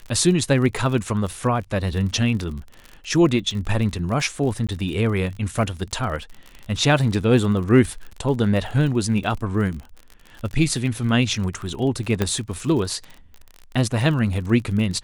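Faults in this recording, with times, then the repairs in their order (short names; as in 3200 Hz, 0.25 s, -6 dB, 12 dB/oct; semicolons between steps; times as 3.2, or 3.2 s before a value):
crackle 44/s -29 dBFS
4.67–4.69 gap 16 ms
12.22 pop -7 dBFS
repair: de-click; interpolate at 4.67, 16 ms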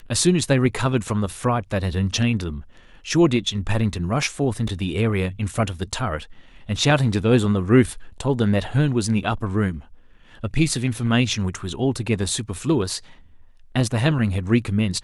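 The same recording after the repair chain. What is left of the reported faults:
12.22 pop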